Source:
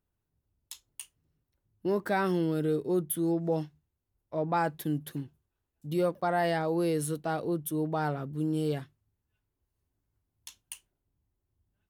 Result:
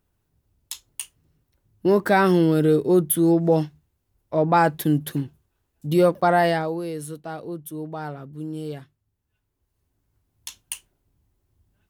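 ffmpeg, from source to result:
ffmpeg -i in.wav -af "volume=23.5dB,afade=type=out:start_time=6.31:duration=0.5:silence=0.237137,afade=type=in:start_time=8.79:duration=1.83:silence=0.223872" out.wav

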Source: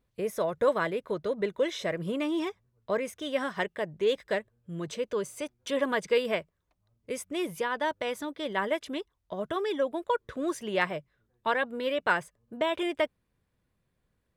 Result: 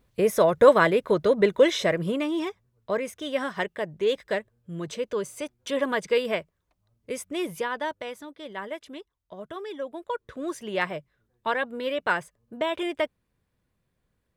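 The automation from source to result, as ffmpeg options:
ffmpeg -i in.wav -af "volume=16.5dB,afade=type=out:start_time=1.67:duration=0.6:silence=0.421697,afade=type=out:start_time=7.57:duration=0.63:silence=0.398107,afade=type=in:start_time=9.76:duration=1.18:silence=0.446684" out.wav

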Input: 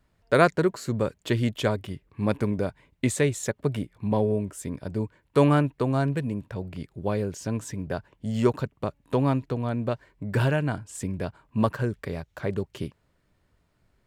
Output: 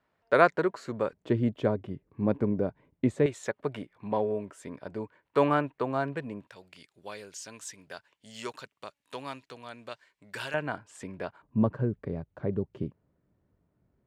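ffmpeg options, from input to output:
ffmpeg -i in.wav -af "asetnsamples=nb_out_samples=441:pad=0,asendcmd='1.13 bandpass f 320;3.26 bandpass f 1100;6.47 bandpass f 4900;10.54 bandpass f 1200;11.42 bandpass f 220',bandpass=frequency=1000:width_type=q:width=0.55:csg=0" out.wav

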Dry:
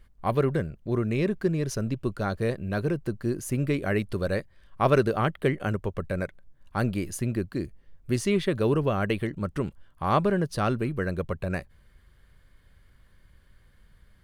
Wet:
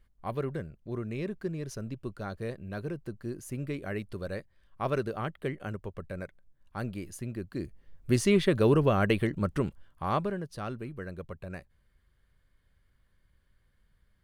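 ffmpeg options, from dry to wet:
ffmpeg -i in.wav -af "volume=1dB,afade=type=in:start_time=7.38:duration=0.74:silence=0.316228,afade=type=out:start_time=9.44:duration=0.97:silence=0.251189" out.wav

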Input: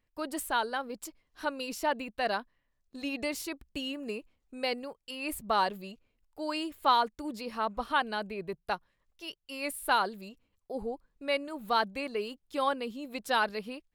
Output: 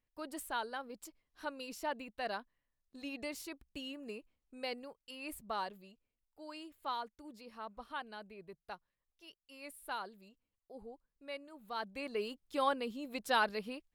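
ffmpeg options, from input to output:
ffmpeg -i in.wav -af "volume=3dB,afade=type=out:start_time=5.16:duration=0.74:silence=0.501187,afade=type=in:start_time=11.74:duration=0.5:silence=0.266073" out.wav

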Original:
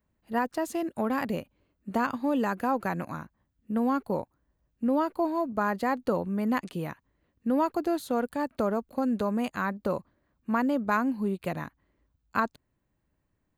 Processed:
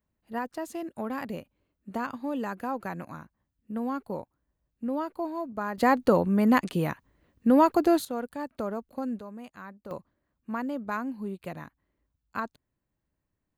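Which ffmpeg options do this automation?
ffmpeg -i in.wav -af "asetnsamples=nb_out_samples=441:pad=0,asendcmd='5.78 volume volume 6dB;8.05 volume volume -5dB;9.19 volume volume -14dB;9.91 volume volume -6dB',volume=-5dB" out.wav

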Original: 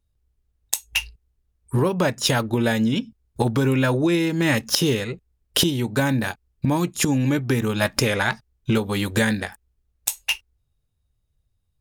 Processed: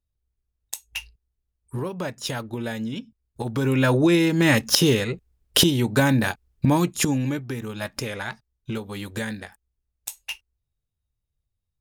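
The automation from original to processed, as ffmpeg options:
ffmpeg -i in.wav -af "volume=2dB,afade=type=in:start_time=3.43:duration=0.53:silence=0.281838,afade=type=out:start_time=6.73:duration=0.75:silence=0.266073" out.wav

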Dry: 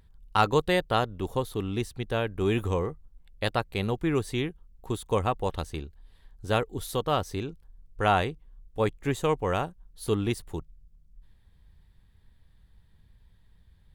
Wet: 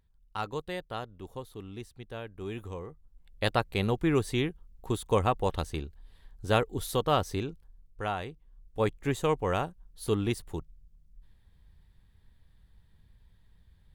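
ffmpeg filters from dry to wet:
ffmpeg -i in.wav -af "volume=10.5dB,afade=type=in:start_time=2.86:duration=0.63:silence=0.237137,afade=type=out:start_time=7.34:duration=0.83:silence=0.251189,afade=type=in:start_time=8.17:duration=0.67:silence=0.316228" out.wav

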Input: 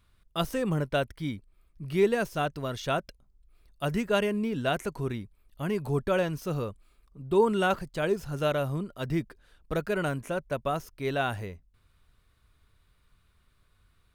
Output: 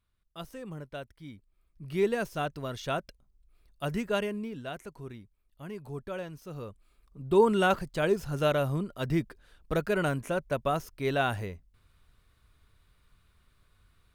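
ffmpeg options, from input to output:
ffmpeg -i in.wav -af "volume=9dB,afade=type=in:start_time=1.26:duration=0.81:silence=0.316228,afade=type=out:start_time=4.09:duration=0.57:silence=0.398107,afade=type=in:start_time=6.52:duration=0.76:silence=0.251189" out.wav

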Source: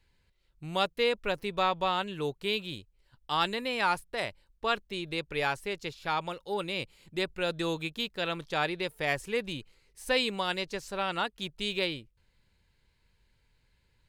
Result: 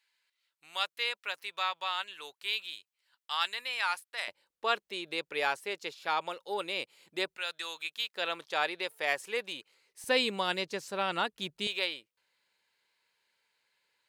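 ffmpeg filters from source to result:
ffmpeg -i in.wav -af "asetnsamples=nb_out_samples=441:pad=0,asendcmd='4.28 highpass f 410;7.37 highpass f 1300;8.14 highpass f 520;10.04 highpass f 180;11.67 highpass f 630',highpass=1300" out.wav

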